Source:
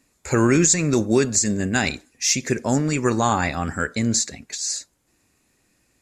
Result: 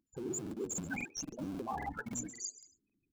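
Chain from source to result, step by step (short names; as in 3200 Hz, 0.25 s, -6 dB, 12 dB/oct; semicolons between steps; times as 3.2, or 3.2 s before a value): loudest bins only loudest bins 4; in parallel at -12 dB: Schmitt trigger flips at -24.5 dBFS; on the sum: notch 1900 Hz, Q 6.5; frequency-shifting echo 0.256 s, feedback 30%, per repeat +85 Hz, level -19.5 dB; dynamic EQ 790 Hz, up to +4 dB, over -33 dBFS, Q 0.87; de-hum 57.14 Hz, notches 15; granular stretch 0.52×, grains 20 ms; low shelf 300 Hz -11 dB; reverse; compressor 6:1, threshold -38 dBFS, peak gain reduction 16.5 dB; reverse; crackling interface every 0.27 s, samples 2048, repeat, from 0.42; gain +1 dB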